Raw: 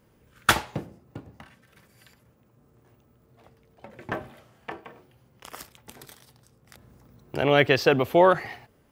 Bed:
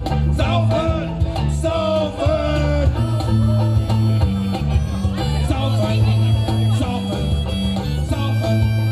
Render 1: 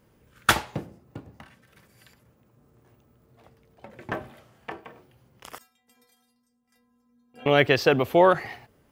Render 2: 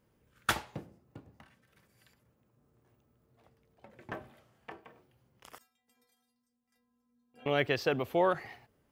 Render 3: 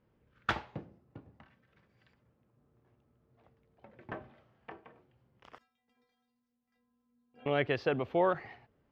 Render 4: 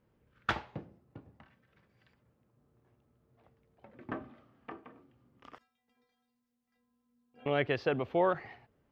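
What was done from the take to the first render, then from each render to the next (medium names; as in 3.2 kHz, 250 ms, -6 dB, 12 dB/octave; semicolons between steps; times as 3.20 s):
5.58–7.46 s: inharmonic resonator 240 Hz, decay 0.46 s, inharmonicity 0.008
trim -10 dB
distance through air 230 m
3.94–5.54 s: small resonant body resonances 270/1200 Hz, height 12 dB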